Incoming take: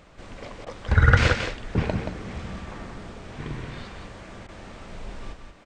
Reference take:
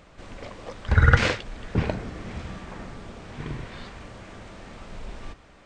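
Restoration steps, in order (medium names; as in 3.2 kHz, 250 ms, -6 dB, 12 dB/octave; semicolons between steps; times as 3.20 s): interpolate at 0.65/4.47 s, 15 ms; inverse comb 177 ms -6.5 dB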